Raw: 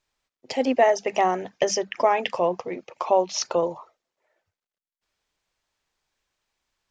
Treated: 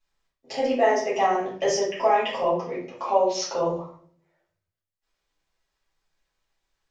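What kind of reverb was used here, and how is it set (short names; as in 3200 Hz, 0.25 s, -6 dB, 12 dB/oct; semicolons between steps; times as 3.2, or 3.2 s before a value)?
shoebox room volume 67 m³, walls mixed, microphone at 2.3 m; gain -11 dB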